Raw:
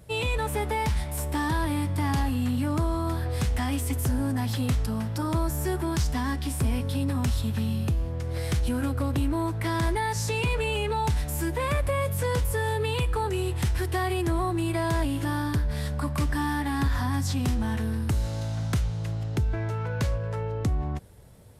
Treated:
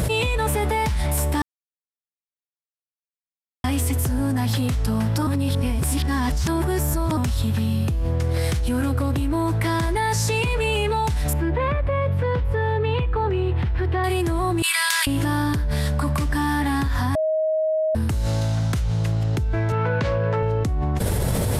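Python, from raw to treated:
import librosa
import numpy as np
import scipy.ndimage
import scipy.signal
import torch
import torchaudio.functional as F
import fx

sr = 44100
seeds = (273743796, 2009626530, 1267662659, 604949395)

y = fx.air_absorb(x, sr, metres=370.0, at=(11.33, 14.04))
y = fx.bessel_highpass(y, sr, hz=2100.0, order=6, at=(14.62, 15.07))
y = fx.bandpass_edges(y, sr, low_hz=130.0, high_hz=3500.0, at=(19.72, 20.43))
y = fx.edit(y, sr, fx.silence(start_s=1.42, length_s=2.22),
    fx.reverse_span(start_s=5.27, length_s=1.9),
    fx.bleep(start_s=17.15, length_s=0.8, hz=629.0, db=-22.0), tone=tone)
y = fx.env_flatten(y, sr, amount_pct=100)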